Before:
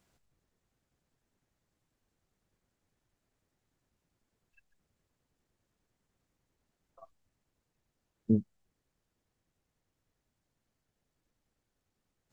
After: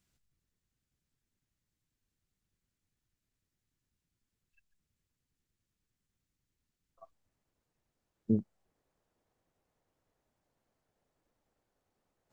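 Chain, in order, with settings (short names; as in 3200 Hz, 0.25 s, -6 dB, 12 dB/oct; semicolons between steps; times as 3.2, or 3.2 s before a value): bell 670 Hz -11.5 dB 2.2 oct, from 7.01 s +2.5 dB, from 8.39 s +9.5 dB; gain -3 dB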